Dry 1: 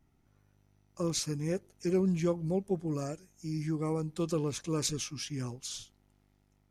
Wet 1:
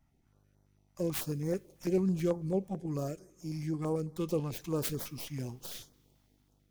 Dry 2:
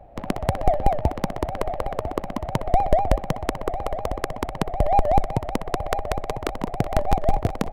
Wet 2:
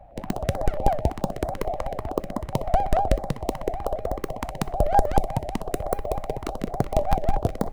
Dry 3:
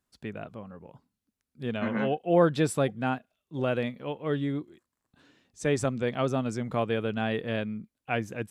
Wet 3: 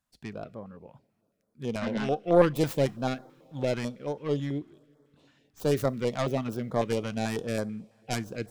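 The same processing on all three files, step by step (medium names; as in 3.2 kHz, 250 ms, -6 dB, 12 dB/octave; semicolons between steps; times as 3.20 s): tracing distortion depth 0.49 ms; peaking EQ 560 Hz +4 dB 1.2 oct; two-slope reverb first 0.31 s, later 3.7 s, from -18 dB, DRR 19 dB; step-sequenced notch 9.1 Hz 400–2700 Hz; trim -1.5 dB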